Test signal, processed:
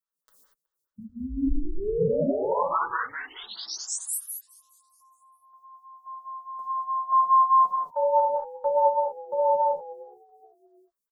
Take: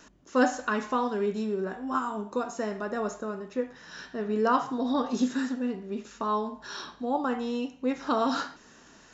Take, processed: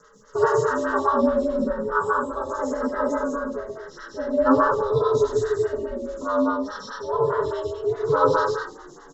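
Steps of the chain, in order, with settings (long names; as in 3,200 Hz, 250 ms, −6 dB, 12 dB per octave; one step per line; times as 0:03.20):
harmonic and percussive parts rebalanced percussive −8 dB
comb filter 7 ms, depth 83%
ring modulation 160 Hz
phaser with its sweep stopped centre 490 Hz, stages 8
echo with shifted repeats 370 ms, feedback 40%, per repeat −68 Hz, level −24 dB
reverb whose tail is shaped and stops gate 260 ms flat, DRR −4.5 dB
phaser with staggered stages 4.8 Hz
level +8.5 dB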